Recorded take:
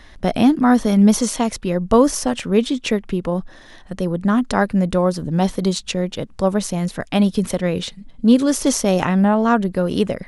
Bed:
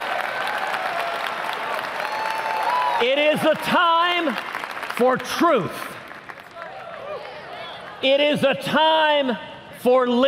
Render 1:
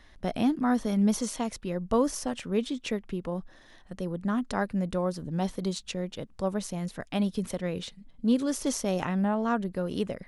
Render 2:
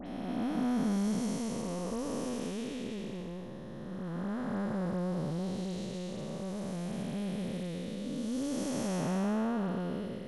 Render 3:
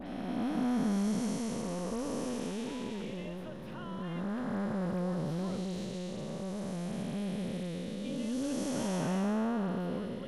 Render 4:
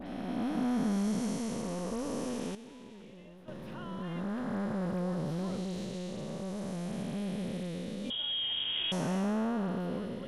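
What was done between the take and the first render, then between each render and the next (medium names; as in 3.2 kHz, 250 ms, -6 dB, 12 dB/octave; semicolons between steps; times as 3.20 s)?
trim -11.5 dB
spectral blur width 683 ms; phase dispersion highs, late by 67 ms, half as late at 2.8 kHz
add bed -31.5 dB
2.55–3.48 s: gain -11.5 dB; 8.10–8.92 s: frequency inversion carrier 3.5 kHz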